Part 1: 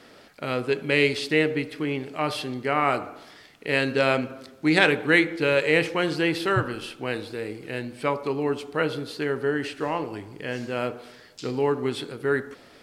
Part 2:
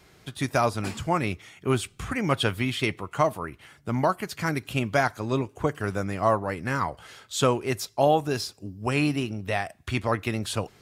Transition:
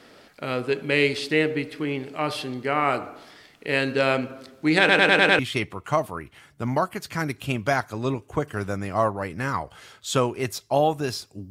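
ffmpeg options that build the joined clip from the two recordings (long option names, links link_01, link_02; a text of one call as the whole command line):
ffmpeg -i cue0.wav -i cue1.wav -filter_complex "[0:a]apad=whole_dur=11.5,atrim=end=11.5,asplit=6[link_01][link_02][link_03][link_04][link_05][link_06];[link_01]atrim=end=4.892[link_07];[link_02]atrim=start=4.788:end=4.892[link_08];[link_03]atrim=start=4.788:end=4.892[link_09];[link_04]atrim=start=4.788:end=4.892[link_10];[link_05]atrim=start=4.788:end=4.892[link_11];[link_06]atrim=start=4.788:end=4.892[link_12];[1:a]atrim=start=2.658:end=8.77[link_13];[link_07][link_08]acrossfade=duration=0.004:curve1=hsin:curve2=hsin[link_14];[link_14][link_09]acrossfade=duration=0.004:curve1=hsin:curve2=hsin[link_15];[link_15][link_10]acrossfade=duration=0.004:curve1=hsin:curve2=hsin[link_16];[link_16][link_11]acrossfade=duration=0.004:curve1=hsin:curve2=hsin[link_17];[link_17][link_12]acrossfade=duration=0.004:curve1=hsin:curve2=hsin[link_18];[link_18][link_13]acrossfade=duration=0.004:curve1=hsin:curve2=hsin" out.wav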